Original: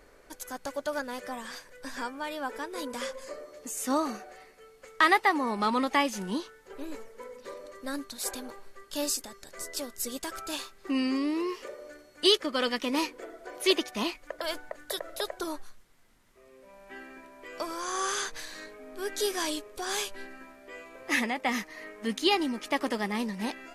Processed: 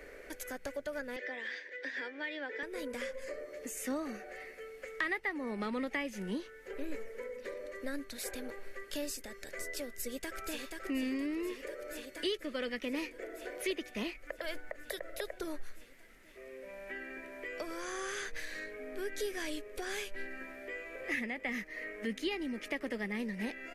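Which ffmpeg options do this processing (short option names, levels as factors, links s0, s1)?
-filter_complex "[0:a]asettb=1/sr,asplit=3[s0][s1][s2];[s0]atrim=end=1.164[s3];[s1]atrim=start=1.16:end=2.63,asetpts=PTS-STARTPTS,afade=t=in:d=0.004:c=qsin,afade=t=out:st=1.466:d=0.004:c=qsin,highpass=f=300:w=0.5412,highpass=f=300:w=1.3066,equalizer=f=340:t=q:w=4:g=6,equalizer=f=660:t=q:w=4:g=-4,equalizer=f=1200:t=q:w=4:g=-7,equalizer=f=1900:t=q:w=4:g=9,equalizer=f=3500:t=q:w=4:g=7,lowpass=f=5600:w=0.5412,lowpass=f=5600:w=1.3066[s4];[s2]atrim=start=2.626[s5];[s3][s4]acrossfade=d=0.004:c1=hsin:c2=qsin[s6];[s6][s5]acrossfade=d=0.004:c1=qsin:c2=hsin,asplit=2[s7][s8];[s8]afade=t=in:st=9.91:d=0.01,afade=t=out:st=10.61:d=0.01,aecho=0:1:480|960|1440|1920|2400|2880|3360|3840|4320|4800|5280|5760:0.446684|0.335013|0.25126|0.188445|0.141333|0.106|0.0795001|0.0596251|0.0447188|0.0335391|0.0251543|0.0188657[s9];[s7][s9]amix=inputs=2:normalize=0,asplit=2[s10][s11];[s11]afade=t=in:st=20.4:d=0.01,afade=t=out:st=20.92:d=0.01,aecho=0:1:350|700|1050|1400|1750|2100|2450|2800|3150|3500|3850|4200:0.473151|0.354863|0.266148|0.199611|0.149708|0.112281|0.0842108|0.0631581|0.0473686|0.0355264|0.0266448|0.0199836[s12];[s10][s12]amix=inputs=2:normalize=0,equalizer=f=125:t=o:w=1:g=-6,equalizer=f=500:t=o:w=1:g=7,equalizer=f=1000:t=o:w=1:g=-10,equalizer=f=2000:t=o:w=1:g=11,equalizer=f=4000:t=o:w=1:g=-4,equalizer=f=8000:t=o:w=1:g=-3,acrossover=split=160[s13][s14];[s14]acompressor=threshold=0.00447:ratio=2.5[s15];[s13][s15]amix=inputs=2:normalize=0,volume=1.5"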